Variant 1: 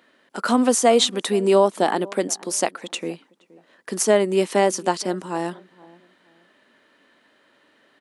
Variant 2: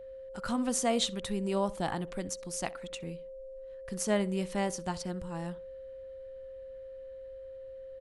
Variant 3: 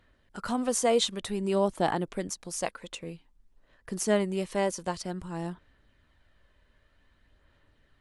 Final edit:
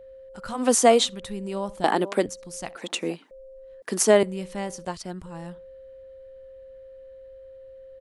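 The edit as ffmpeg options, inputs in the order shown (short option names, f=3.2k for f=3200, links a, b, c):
-filter_complex "[0:a]asplit=4[a][b][c][d];[1:a]asplit=6[e][f][g][h][i][j];[e]atrim=end=0.74[k];[a]atrim=start=0.5:end=1.14[l];[f]atrim=start=0.9:end=1.842[m];[b]atrim=start=1.838:end=2.262[n];[g]atrim=start=2.258:end=2.762[o];[c]atrim=start=2.758:end=3.312[p];[h]atrim=start=3.308:end=3.822[q];[d]atrim=start=3.818:end=4.232[r];[i]atrim=start=4.228:end=4.852[s];[2:a]atrim=start=4.848:end=5.262[t];[j]atrim=start=5.258[u];[k][l]acrossfade=d=0.24:c1=tri:c2=tri[v];[v][m]acrossfade=d=0.24:c1=tri:c2=tri[w];[w][n]acrossfade=d=0.004:c1=hsin:c2=hsin[x];[x][o]acrossfade=d=0.004:c1=hsin:c2=hsin[y];[y][p]acrossfade=d=0.004:c1=hsin:c2=hsin[z];[z][q]acrossfade=d=0.004:c1=hsin:c2=hsin[aa];[aa][r]acrossfade=d=0.004:c1=hsin:c2=hsin[ab];[ab][s]acrossfade=d=0.004:c1=hsin:c2=hsin[ac];[ac][t]acrossfade=d=0.004:c1=hsin:c2=hsin[ad];[ad][u]acrossfade=d=0.004:c1=hsin:c2=hsin"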